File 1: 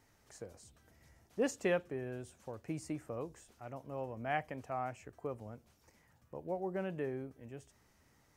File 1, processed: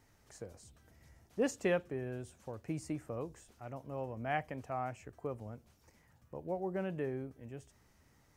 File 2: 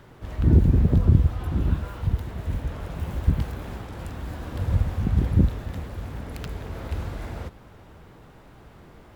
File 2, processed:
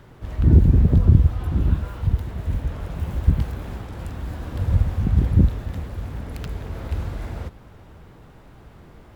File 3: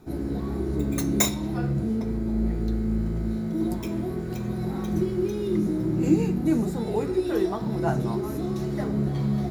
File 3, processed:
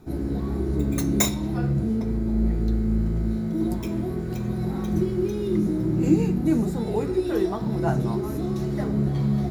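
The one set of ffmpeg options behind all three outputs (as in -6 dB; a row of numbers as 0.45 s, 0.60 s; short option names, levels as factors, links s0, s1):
-af "lowshelf=f=170:g=4.5"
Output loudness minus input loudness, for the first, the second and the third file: +0.5 LU, +3.5 LU, +1.5 LU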